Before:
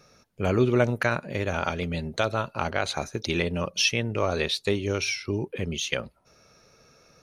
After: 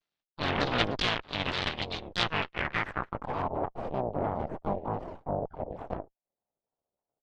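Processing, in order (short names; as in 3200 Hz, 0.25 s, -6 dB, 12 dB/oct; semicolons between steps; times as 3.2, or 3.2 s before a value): HPF 110 Hz 12 dB/oct; harmoniser -4 st -15 dB, +5 st -15 dB, +7 st -2 dB; added harmonics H 3 -9 dB, 5 -36 dB, 8 -16 dB, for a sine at -6.5 dBFS; low-pass sweep 3700 Hz -> 700 Hz, 2.18–3.73; shaped vibrato saw down 3.3 Hz, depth 250 cents; gain -4 dB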